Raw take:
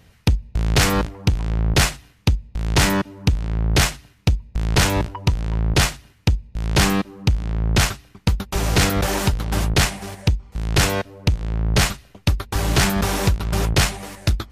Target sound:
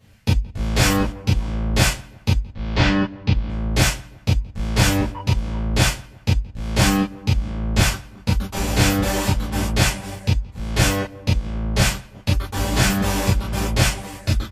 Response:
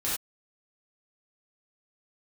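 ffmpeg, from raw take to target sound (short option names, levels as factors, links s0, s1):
-filter_complex "[0:a]asplit=3[s0][s1][s2];[s0]afade=t=out:st=2.48:d=0.02[s3];[s1]lowpass=f=4600:w=0.5412,lowpass=f=4600:w=1.3066,afade=t=in:st=2.48:d=0.02,afade=t=out:st=3.48:d=0.02[s4];[s2]afade=t=in:st=3.48:d=0.02[s5];[s3][s4][s5]amix=inputs=3:normalize=0,asplit=2[s6][s7];[s7]adelay=173,lowpass=f=1800:p=1,volume=0.075,asplit=2[s8][s9];[s9]adelay=173,lowpass=f=1800:p=1,volume=0.52,asplit=2[s10][s11];[s11]adelay=173,lowpass=f=1800:p=1,volume=0.52,asplit=2[s12][s13];[s13]adelay=173,lowpass=f=1800:p=1,volume=0.52[s14];[s6][s8][s10][s12][s14]amix=inputs=5:normalize=0[s15];[1:a]atrim=start_sample=2205,asetrate=83790,aresample=44100[s16];[s15][s16]afir=irnorm=-1:irlink=0,volume=0.794"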